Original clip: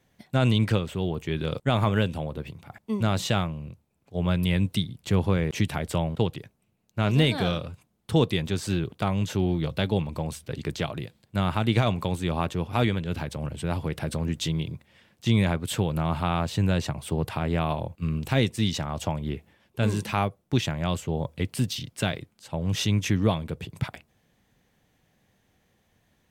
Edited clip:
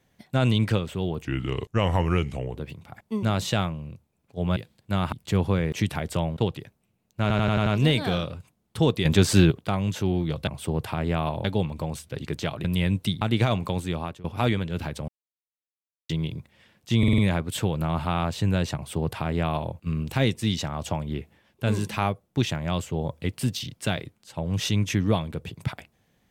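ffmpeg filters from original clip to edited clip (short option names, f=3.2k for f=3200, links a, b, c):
-filter_complex "[0:a]asplit=23[a][b][c][d][e][f][g][h][i][j][k][l][m][n][o][p][q][r][s][t][u][v][w];[a]atrim=end=1.254[x];[b]atrim=start=1.25:end=2.34,asetpts=PTS-STARTPTS,asetrate=36603,aresample=44100,atrim=end_sample=57914,asetpts=PTS-STARTPTS[y];[c]atrim=start=2.336:end=4.342[z];[d]atrim=start=11.008:end=11.572[aa];[e]atrim=start=4.908:end=7.092[ab];[f]atrim=start=6.998:end=7.092[ac];[g]atrim=start=6.998:end=7.092[ad];[h]atrim=start=6.998:end=7.092[ae];[i]atrim=start=6.998:end=7.092[af];[j]atrim=start=6.998:end=8.392[ag];[k]atrim=start=8.388:end=8.852,asetpts=PTS-STARTPTS,volume=9.5dB[ah];[l]atrim=start=8.848:end=9.812[ai];[m]atrim=start=16.908:end=17.882[aj];[n]atrim=start=9.808:end=11.012[ak];[o]atrim=start=4.338:end=4.912[al];[p]atrim=start=11.568:end=12.6,asetpts=PTS-STARTPTS,afade=t=out:st=0.642:d=0.39:silence=0.0891251[am];[q]atrim=start=12.6:end=13.44,asetpts=PTS-STARTPTS,afade=t=in:d=0.004:c=hsin:silence=0.0891251,afade=t=out:st=0.836:d=0.004:c=hsin[an];[r]atrim=start=13.44:end=14.45,asetpts=PTS-STARTPTS,volume=0[ao];[s]atrim=start=14.45:end=15.392,asetpts=PTS-STARTPTS,afade=t=in:d=0.004:c=hsin[ap];[t]atrim=start=15.338:end=15.392[aq];[u]atrim=start=15.338:end=15.392[ar];[v]atrim=start=15.338:end=15.392[as];[w]atrim=start=15.338[at];[x][y]acrossfade=d=0.004:c1=hsin:c2=hsin[au];[au][z]acrossfade=d=0.004:c1=hsin:c2=hsin[av];[av][aa]acrossfade=d=0.004:c1=hsin:c2=hsin[aw];[aw][ab]acrossfade=d=0.004:c1=hsin:c2=hsin[ax];[ax][ac]acrossfade=d=0.004:c1=hsin:c2=hsin[ay];[ay][ad]acrossfade=d=0.004:c1=hsin:c2=hsin[az];[az][ae]acrossfade=d=0.004:c1=hsin:c2=hsin[ba];[ba][af]acrossfade=d=0.004:c1=hsin:c2=hsin[bb];[bb][ag]acrossfade=d=0.004:c1=hsin:c2=hsin[bc];[bc][ah]acrossfade=d=0.004:c1=hsin:c2=hsin[bd];[bd][ai]acrossfade=d=0.004:c1=hsin:c2=hsin[be];[be][aj]acrossfade=d=0.004:c1=hsin:c2=hsin[bf];[bf][ak]acrossfade=d=0.004:c1=hsin:c2=hsin[bg];[bg][al]acrossfade=d=0.004:c1=hsin:c2=hsin[bh];[am][an][ao][ap]concat=n=4:v=0:a=1[bi];[bh][bi]acrossfade=d=0.004:c1=hsin:c2=hsin[bj];[bj][aq]acrossfade=d=0.004:c1=hsin:c2=hsin[bk];[bk][ar]acrossfade=d=0.004:c1=hsin:c2=hsin[bl];[bl][as]acrossfade=d=0.004:c1=hsin:c2=hsin[bm];[bm][at]acrossfade=d=0.004:c1=hsin:c2=hsin"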